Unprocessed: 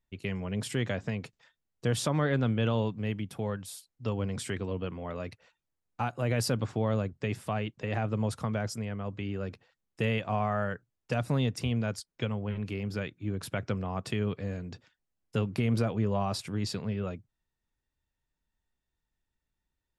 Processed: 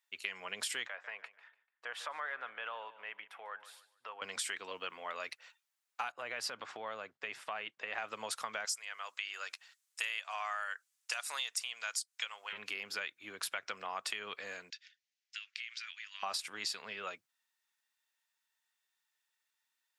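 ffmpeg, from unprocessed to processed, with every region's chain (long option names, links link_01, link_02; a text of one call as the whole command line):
ffmpeg -i in.wav -filter_complex "[0:a]asettb=1/sr,asplit=3[link_01][link_02][link_03];[link_01]atrim=end=0.874[link_04];[link_02]atrim=start=0.87:end=4.22,asetpts=PTS-STARTPTS,afade=type=in:duration=0.004:curve=qsin,afade=type=out:start_time=3.346:duration=0.004:curve=qsin,acrossover=split=500 2300:gain=0.112 1 0.0631[link_05][link_06][link_07];[link_05][link_06][link_07]amix=inputs=3:normalize=0,aecho=1:1:146|292|438:0.112|0.0381|0.013,atrim=end_sample=147735,acompressor=threshold=-46dB:ratio=1.5:attack=3.2:release=140:knee=1:detection=peak[link_08];[link_03]atrim=start=4.216[link_09];[link_04][link_08]acrossfade=duration=0.004:curve1=hsin:curve2=qsin[link_10];[link_10][link_09]acrossfade=duration=0.004:curve1=qsin:curve2=hsin,asettb=1/sr,asplit=3[link_11][link_12][link_13];[link_11]atrim=end=6.124[link_14];[link_12]atrim=start=6.12:end=7.98,asetpts=PTS-STARTPTS,afade=type=in:duration=0.004:curve=qsin,afade=type=out:start_time=1.856:duration=0.004:curve=qsin,aemphasis=mode=reproduction:type=75fm,agate=range=-7dB:threshold=-56dB:ratio=16:release=100:detection=peak,acompressor=threshold=-31dB:ratio=2.5:attack=3.2:release=140:knee=1:detection=peak[link_15];[link_13]atrim=start=7.976[link_16];[link_14][link_15]acrossfade=duration=0.004:curve1=hsin:curve2=qsin[link_17];[link_17][link_16]acrossfade=duration=0.004:curve1=qsin:curve2=hsin,asettb=1/sr,asplit=3[link_18][link_19][link_20];[link_18]atrim=end=8.654[link_21];[link_19]atrim=start=8.65:end=12.53,asetpts=PTS-STARTPTS,afade=type=in:duration=0.004:curve=qsin,afade=type=out:start_time=3.876:duration=0.004:curve=qsin,highpass=860,equalizer=frequency=8200:width=0.71:gain=10[link_22];[link_20]atrim=start=12.526[link_23];[link_21][link_22]acrossfade=duration=0.004:curve1=hsin:curve2=qsin[link_24];[link_24][link_23]acrossfade=duration=0.004:curve1=qsin:curve2=hsin,asettb=1/sr,asplit=3[link_25][link_26][link_27];[link_25]atrim=end=14.704[link_28];[link_26]atrim=start=14.7:end=16.23,asetpts=PTS-STARTPTS,afade=type=in:duration=0.004:curve=qsin,afade=type=out:start_time=1.526:duration=0.004:curve=qsin,asuperpass=centerf=3500:order=8:qfactor=0.71,acompressor=threshold=-47dB:ratio=4:attack=3.2:release=140:knee=1:detection=peak[link_29];[link_27]atrim=start=16.226[link_30];[link_28][link_29]acrossfade=duration=0.004:curve1=hsin:curve2=qsin[link_31];[link_31][link_30]acrossfade=duration=0.004:curve1=qsin:curve2=hsin,highpass=1300,acompressor=threshold=-42dB:ratio=6,volume=7.5dB" out.wav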